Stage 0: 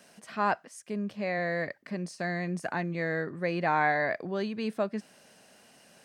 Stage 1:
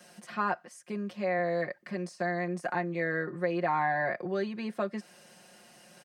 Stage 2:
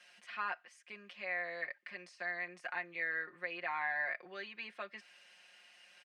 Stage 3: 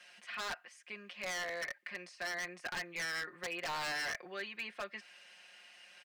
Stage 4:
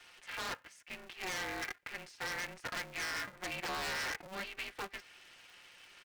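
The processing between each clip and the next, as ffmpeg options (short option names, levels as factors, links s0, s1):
-filter_complex "[0:a]aecho=1:1:5.6:0.81,acrossover=split=280|2100[s0][s1][s2];[s0]acompressor=threshold=0.00794:ratio=4[s3];[s1]acompressor=threshold=0.0501:ratio=4[s4];[s2]acompressor=threshold=0.00316:ratio=4[s5];[s3][s4][s5]amix=inputs=3:normalize=0"
-af "bandpass=f=2500:t=q:w=1.8:csg=0,volume=1.26"
-af "aeval=exprs='0.0158*(abs(mod(val(0)/0.0158+3,4)-2)-1)':c=same,volume=1.5"
-af "aeval=exprs='val(0)*sgn(sin(2*PI*190*n/s))':c=same"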